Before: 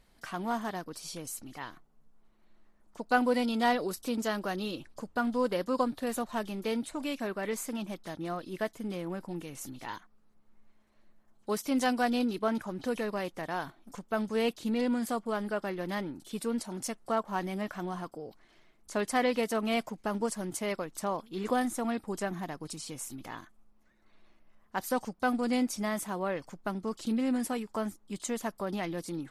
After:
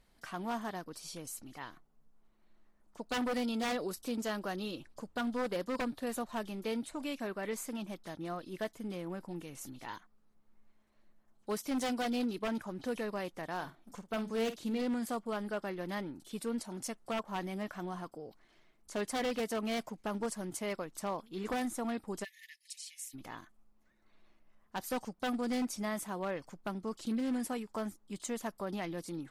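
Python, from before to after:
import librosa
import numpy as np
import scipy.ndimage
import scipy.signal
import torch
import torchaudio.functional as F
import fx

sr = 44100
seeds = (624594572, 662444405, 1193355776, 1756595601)

y = 10.0 ** (-24.0 / 20.0) * (np.abs((x / 10.0 ** (-24.0 / 20.0) + 3.0) % 4.0 - 2.0) - 1.0)
y = fx.doubler(y, sr, ms=49.0, db=-11.5, at=(13.55, 14.82))
y = fx.brickwall_highpass(y, sr, low_hz=1700.0, at=(22.23, 23.13), fade=0.02)
y = y * librosa.db_to_amplitude(-4.0)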